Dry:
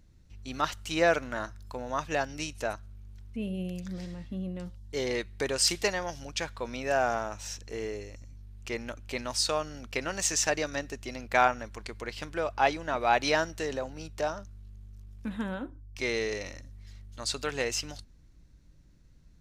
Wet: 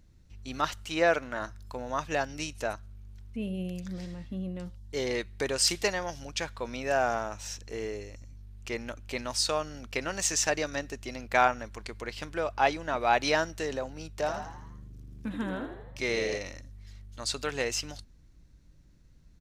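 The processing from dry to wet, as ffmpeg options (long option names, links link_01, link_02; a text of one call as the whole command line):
ffmpeg -i in.wav -filter_complex "[0:a]asettb=1/sr,asplit=3[link_01][link_02][link_03];[link_01]atrim=end=0.854[link_04];[link_02]atrim=start=0.85:end=1.42,asetpts=PTS-STARTPTS,afade=type=in:duration=0.004:curve=qsin,afade=type=out:start_time=0.566:duration=0.004:curve=qsin,bass=frequency=250:gain=-4,treble=frequency=4000:gain=-4[link_05];[link_03]atrim=start=1.416[link_06];[link_04][link_05]acrossfade=duration=0.004:curve1=hsin:curve2=qsin[link_07];[link_07][link_06]acrossfade=duration=0.004:curve1=qsin:curve2=hsin,asplit=3[link_08][link_09][link_10];[link_08]afade=type=out:start_time=14.19:duration=0.02[link_11];[link_09]asplit=7[link_12][link_13][link_14][link_15][link_16][link_17][link_18];[link_13]adelay=81,afreqshift=74,volume=-8dB[link_19];[link_14]adelay=162,afreqshift=148,volume=-13.7dB[link_20];[link_15]adelay=243,afreqshift=222,volume=-19.4dB[link_21];[link_16]adelay=324,afreqshift=296,volume=-25dB[link_22];[link_17]adelay=405,afreqshift=370,volume=-30.7dB[link_23];[link_18]adelay=486,afreqshift=444,volume=-36.4dB[link_24];[link_12][link_19][link_20][link_21][link_22][link_23][link_24]amix=inputs=7:normalize=0,afade=type=in:start_time=14.19:duration=0.02,afade=type=out:start_time=16.37:duration=0.02[link_25];[link_10]afade=type=in:start_time=16.37:duration=0.02[link_26];[link_11][link_25][link_26]amix=inputs=3:normalize=0" out.wav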